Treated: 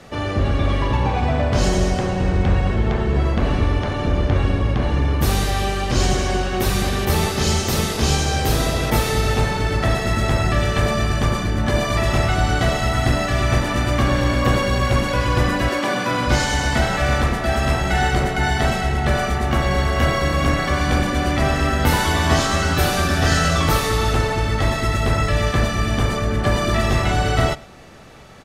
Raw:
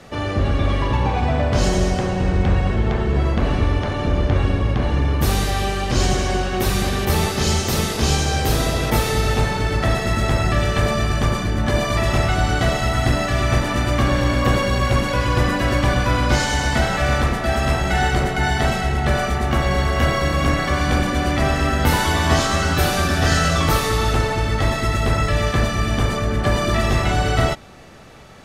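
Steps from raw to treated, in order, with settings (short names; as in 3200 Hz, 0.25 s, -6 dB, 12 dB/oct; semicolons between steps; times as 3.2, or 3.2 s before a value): 15.68–16.26 HPF 300 Hz -> 110 Hz 24 dB/oct; outdoor echo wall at 18 m, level -22 dB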